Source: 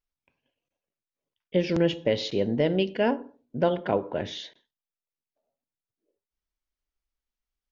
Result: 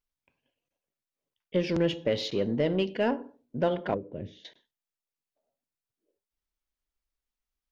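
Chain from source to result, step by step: 3.94–4.45 EQ curve 140 Hz 0 dB, 550 Hz -8 dB, 910 Hz -27 dB, 2600 Hz -15 dB, 4100 Hz -20 dB; in parallel at -6 dB: soft clip -26 dBFS, distortion -7 dB; on the sum: gain -4.5 dB

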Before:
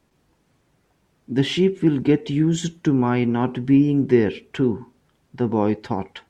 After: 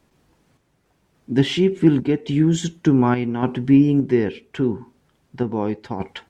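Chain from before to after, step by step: random-step tremolo; gain +3.5 dB

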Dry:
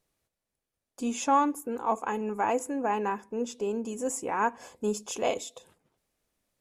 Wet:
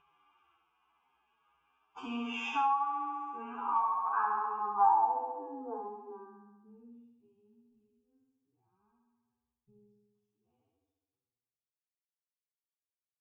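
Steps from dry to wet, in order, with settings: band-pass sweep 1000 Hz -> 5100 Hz, 2.99–3.96; gate -60 dBFS, range -41 dB; chorus voices 4, 1 Hz, delay 15 ms, depth 3 ms; comb 2.5 ms, depth 40%; upward compressor, threshold -38 dBFS; fixed phaser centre 2800 Hz, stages 8; flutter echo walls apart 5.8 m, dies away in 0.65 s; compressor 10:1, threshold -36 dBFS, peak gain reduction 16 dB; low-pass sweep 2800 Hz -> 110 Hz, 1.8–3.65; time stretch by phase-locked vocoder 2×; gain +7.5 dB

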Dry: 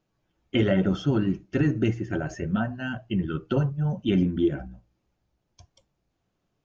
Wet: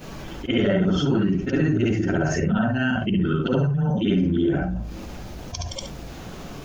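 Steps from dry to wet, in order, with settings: short-time reversal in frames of 0.141 s; flange 2 Hz, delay 3.9 ms, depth 1.4 ms, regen -70%; fast leveller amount 70%; gain +7.5 dB

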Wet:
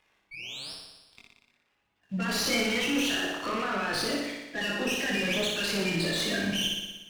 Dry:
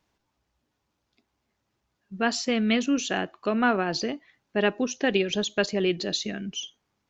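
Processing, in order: bin magnitudes rounded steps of 30 dB; bell 2600 Hz +13.5 dB 1.6 oct; in parallel at -0.5 dB: negative-ratio compressor -26 dBFS; on the sum: limiter -17.5 dBFS, peak gain reduction 16 dB; sample leveller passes 2; 0.31–0.73 painted sound rise 2200–5600 Hz -33 dBFS; 2.29–2.81 doubler 30 ms -5 dB; chorus voices 2, 1 Hz, delay 23 ms, depth 3 ms; on a send: flutter echo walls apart 10.2 m, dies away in 1.1 s; on the sum: running maximum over 3 samples; gain -5.5 dB

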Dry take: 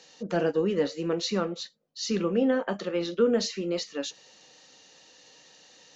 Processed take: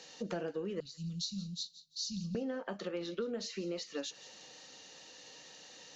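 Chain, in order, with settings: 0.8–2.35 elliptic band-stop 170–4000 Hz, stop band 40 dB; compressor 6:1, threshold -37 dBFS, peak gain reduction 18 dB; on a send: thin delay 0.171 s, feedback 31%, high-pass 1800 Hz, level -15.5 dB; on the sum: gain +1 dB

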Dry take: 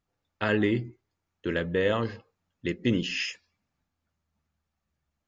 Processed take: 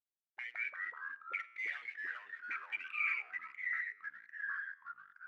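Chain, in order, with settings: per-bin expansion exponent 1.5; Doppler pass-by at 1.92, 36 m/s, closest 7.1 m; LPF 3700 Hz 24 dB/oct; bell 2100 Hz +13.5 dB 0.39 oct; harmonic-percussive split harmonic -9 dB; tilt +4 dB/oct; sample leveller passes 5; auto swell 0.167 s; compressor 12:1, threshold -43 dBFS, peak gain reduction 22.5 dB; resonator 120 Hz, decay 1 s, harmonics all, mix 50%; auto-wah 340–2300 Hz, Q 12, up, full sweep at -53 dBFS; echoes that change speed 93 ms, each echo -3 st, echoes 3; gain +18 dB

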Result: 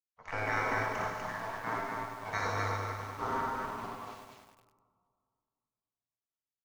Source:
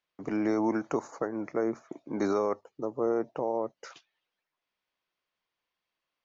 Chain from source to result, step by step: notches 60/120/180/240/300/360/420/480/540 Hz; spectral gate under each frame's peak -20 dB weak; high shelf 2600 Hz -6.5 dB; comb 4.5 ms, depth 34%; tempo 0.94×; in parallel at -7 dB: bit-crush 8-bit; on the sum: air absorption 93 m; tapped delay 56/59/87/225/246 ms -5.5/-9.5/-8.5/-10.5/-3 dB; on a send at -11.5 dB: reverb RT60 2.1 s, pre-delay 3 ms; on the sum: lo-fi delay 99 ms, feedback 80%, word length 10-bit, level -8 dB; gain +6 dB

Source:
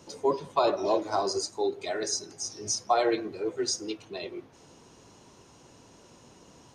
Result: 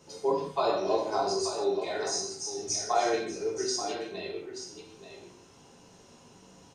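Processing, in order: echo 0.882 s -10 dB; non-linear reverb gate 0.21 s falling, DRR -3.5 dB; gain -6 dB

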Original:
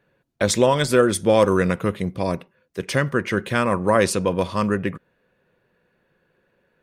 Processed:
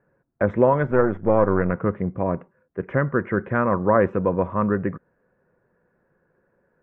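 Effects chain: 0.91–1.73 half-wave gain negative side -7 dB; inverse Chebyshev low-pass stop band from 4200 Hz, stop band 50 dB

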